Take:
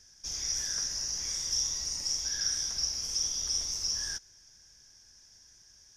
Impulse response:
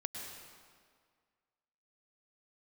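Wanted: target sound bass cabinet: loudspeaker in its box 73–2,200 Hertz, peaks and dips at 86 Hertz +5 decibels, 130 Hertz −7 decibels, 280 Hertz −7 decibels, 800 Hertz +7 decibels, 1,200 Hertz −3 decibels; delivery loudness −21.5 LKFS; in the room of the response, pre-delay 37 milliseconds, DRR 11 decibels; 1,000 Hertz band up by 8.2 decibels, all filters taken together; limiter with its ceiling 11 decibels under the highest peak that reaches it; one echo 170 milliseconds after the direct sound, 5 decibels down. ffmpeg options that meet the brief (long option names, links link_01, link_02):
-filter_complex "[0:a]equalizer=frequency=1000:width_type=o:gain=7.5,alimiter=level_in=4dB:limit=-24dB:level=0:latency=1,volume=-4dB,aecho=1:1:170:0.562,asplit=2[link_01][link_02];[1:a]atrim=start_sample=2205,adelay=37[link_03];[link_02][link_03]afir=irnorm=-1:irlink=0,volume=-11dB[link_04];[link_01][link_04]amix=inputs=2:normalize=0,highpass=frequency=73:width=0.5412,highpass=frequency=73:width=1.3066,equalizer=frequency=86:width_type=q:width=4:gain=5,equalizer=frequency=130:width_type=q:width=4:gain=-7,equalizer=frequency=280:width_type=q:width=4:gain=-7,equalizer=frequency=800:width_type=q:width=4:gain=7,equalizer=frequency=1200:width_type=q:width=4:gain=-3,lowpass=frequency=2200:width=0.5412,lowpass=frequency=2200:width=1.3066,volume=29dB"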